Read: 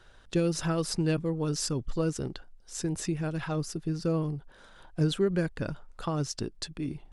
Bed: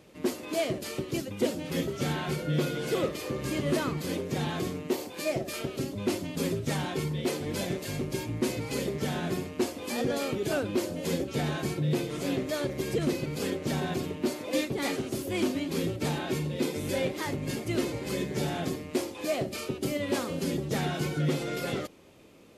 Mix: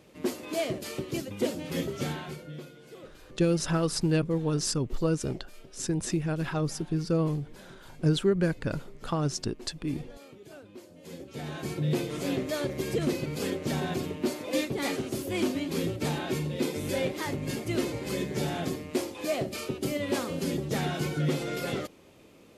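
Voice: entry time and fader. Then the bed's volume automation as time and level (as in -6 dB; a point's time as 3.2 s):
3.05 s, +2.0 dB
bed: 2.01 s -1 dB
2.76 s -19 dB
10.86 s -19 dB
11.84 s 0 dB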